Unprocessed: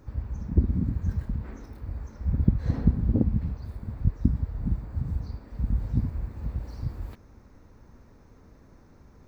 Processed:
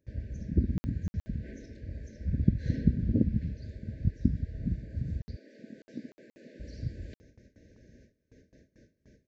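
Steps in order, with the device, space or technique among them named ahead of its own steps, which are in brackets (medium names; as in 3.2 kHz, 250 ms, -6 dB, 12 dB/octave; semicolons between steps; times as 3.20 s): FFT band-reject 660–1500 Hz; gate with hold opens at -43 dBFS; 5.36–6.60 s: high-pass 280 Hz 24 dB/octave; dynamic bell 570 Hz, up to -5 dB, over -46 dBFS, Q 1.4; call with lost packets (high-pass 110 Hz 6 dB/octave; resampled via 16 kHz; lost packets of 60 ms random)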